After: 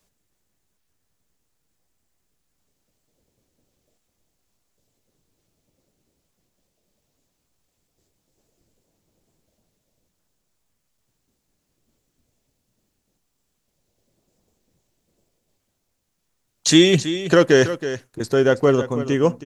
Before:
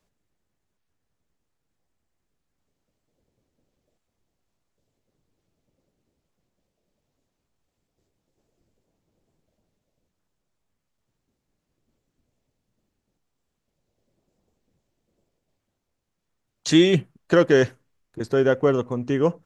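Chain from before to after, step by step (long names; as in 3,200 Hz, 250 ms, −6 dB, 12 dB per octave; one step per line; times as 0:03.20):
high-shelf EQ 4,200 Hz +10.5 dB
single-tap delay 324 ms −12 dB
level +2.5 dB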